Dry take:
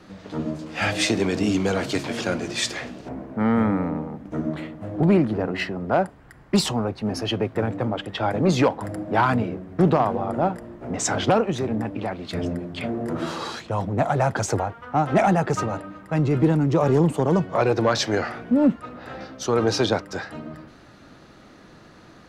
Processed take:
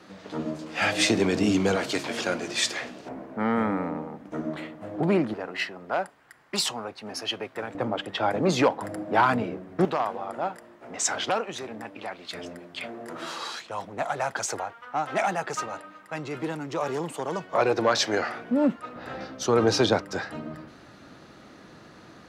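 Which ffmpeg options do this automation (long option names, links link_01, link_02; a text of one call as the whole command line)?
ffmpeg -i in.wav -af "asetnsamples=nb_out_samples=441:pad=0,asendcmd='0.98 highpass f 110;1.76 highpass f 410;5.34 highpass f 1300;7.75 highpass f 320;9.85 highpass f 1300;17.53 highpass f 410;18.96 highpass f 97',highpass=frequency=300:poles=1" out.wav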